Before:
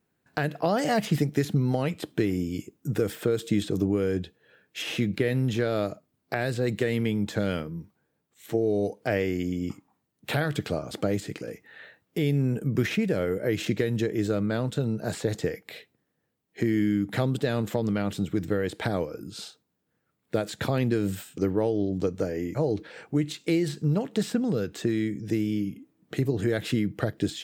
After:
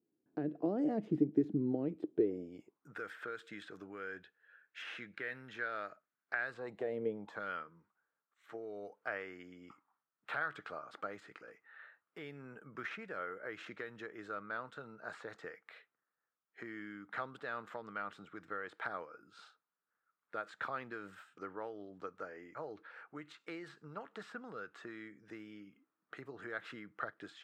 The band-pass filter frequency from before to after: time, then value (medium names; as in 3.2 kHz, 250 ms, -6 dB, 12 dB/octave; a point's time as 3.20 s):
band-pass filter, Q 3.8
2.03 s 320 Hz
3.00 s 1.5 kHz
6.40 s 1.5 kHz
7.07 s 480 Hz
7.41 s 1.3 kHz